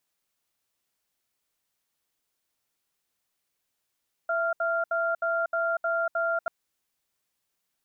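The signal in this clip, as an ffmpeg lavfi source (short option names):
-f lavfi -i "aevalsrc='0.0473*(sin(2*PI*666*t)+sin(2*PI*1390*t))*clip(min(mod(t,0.31),0.24-mod(t,0.31))/0.005,0,1)':d=2.19:s=44100"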